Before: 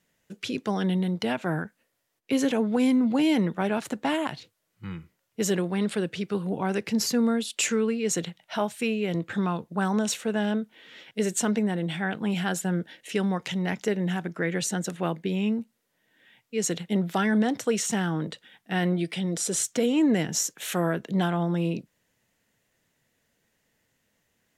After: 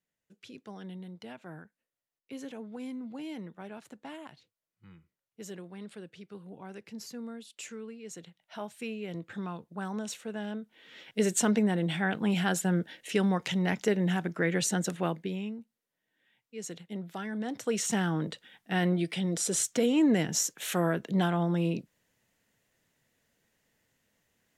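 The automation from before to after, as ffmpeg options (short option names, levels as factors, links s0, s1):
-af "volume=3.35,afade=t=in:st=8.22:d=0.58:silence=0.446684,afade=t=in:st=10.62:d=0.57:silence=0.316228,afade=t=out:st=14.9:d=0.62:silence=0.237137,afade=t=in:st=17.38:d=0.55:silence=0.281838"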